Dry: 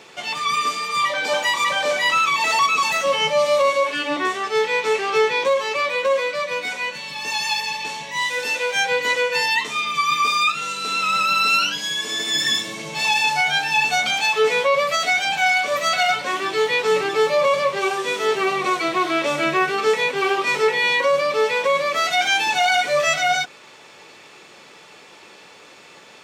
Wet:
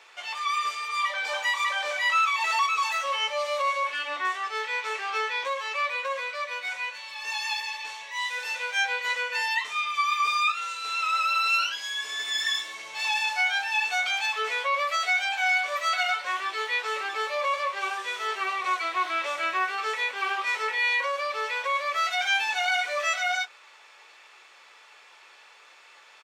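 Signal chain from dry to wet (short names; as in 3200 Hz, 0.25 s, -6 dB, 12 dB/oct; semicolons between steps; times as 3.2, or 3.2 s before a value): HPF 1200 Hz 12 dB/oct; high shelf 2200 Hz -11 dB; doubler 19 ms -12 dB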